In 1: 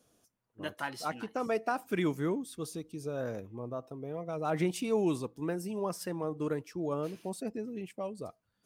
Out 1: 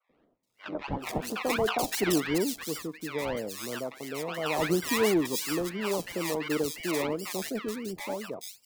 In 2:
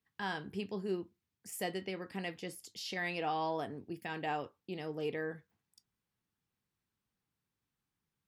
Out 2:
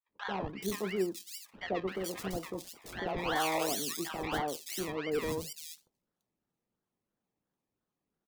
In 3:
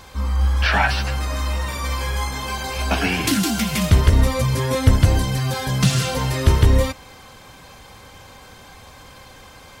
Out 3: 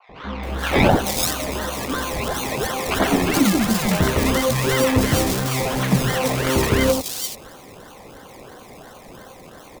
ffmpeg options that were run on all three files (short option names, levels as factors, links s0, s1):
-filter_complex "[0:a]acrossover=split=170 2800:gain=0.112 1 0.141[s0][s1][s2];[s0][s1][s2]amix=inputs=3:normalize=0,bandreject=f=2300:w=12,acrusher=samples=24:mix=1:aa=0.000001:lfo=1:lforange=14.4:lforate=2.9,acrossover=split=1000|3600[s3][s4][s5];[s3]adelay=90[s6];[s5]adelay=430[s7];[s6][s4][s7]amix=inputs=3:normalize=0,adynamicequalizer=threshold=0.00794:dfrequency=1500:dqfactor=0.7:tfrequency=1500:tqfactor=0.7:attack=5:release=100:ratio=0.375:range=2:mode=boostabove:tftype=highshelf,volume=1.88"